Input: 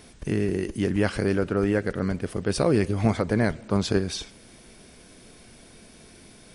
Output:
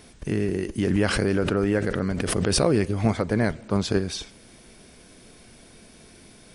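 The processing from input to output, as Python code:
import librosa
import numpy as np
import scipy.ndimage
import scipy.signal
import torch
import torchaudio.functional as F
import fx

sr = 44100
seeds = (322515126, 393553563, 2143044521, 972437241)

y = fx.pre_swell(x, sr, db_per_s=21.0, at=(0.78, 2.74))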